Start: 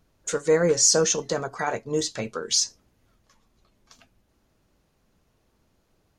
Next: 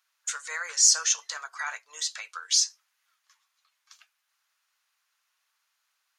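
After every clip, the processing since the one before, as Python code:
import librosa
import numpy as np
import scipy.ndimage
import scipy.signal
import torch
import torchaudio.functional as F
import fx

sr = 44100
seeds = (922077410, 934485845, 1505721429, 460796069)

y = scipy.signal.sosfilt(scipy.signal.butter(4, 1200.0, 'highpass', fs=sr, output='sos'), x)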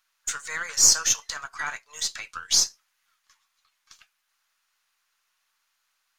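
y = np.where(x < 0.0, 10.0 ** (-3.0 / 20.0) * x, x)
y = y * 10.0 ** (3.5 / 20.0)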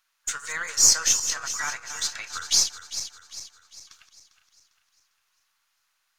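y = fx.reverse_delay_fb(x, sr, ms=200, feedback_pct=66, wet_db=-10)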